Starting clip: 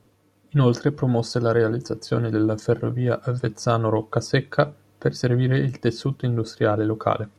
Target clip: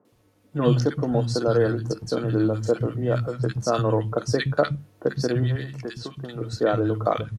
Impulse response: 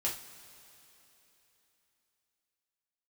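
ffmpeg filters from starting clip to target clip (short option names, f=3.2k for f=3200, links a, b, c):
-filter_complex "[0:a]asettb=1/sr,asplit=3[a][b][c];[a]atrim=end=5.434[d];[b]atrim=start=5.43:end=6.41,asetpts=PTS-STARTPTS,afade=t=in:d=0.004:c=qsin,afade=t=out:st=0.976:d=0.004:c=qsin,acrossover=split=620|7000[e][f][g];[e]acompressor=threshold=-31dB:ratio=4[h];[f]acompressor=threshold=-35dB:ratio=4[i];[g]acompressor=threshold=-58dB:ratio=4[j];[h][i][j]amix=inputs=3:normalize=0[k];[c]atrim=start=6.406[l];[d][k]acrossfade=d=0.004:c1=hsin:c2=qsin[m];[m][l]acrossfade=d=0.004:c1=qsin:c2=hsin,acrossover=split=180|1400[n][o][p];[p]adelay=50[q];[n]adelay=120[r];[r][o][q]amix=inputs=3:normalize=0"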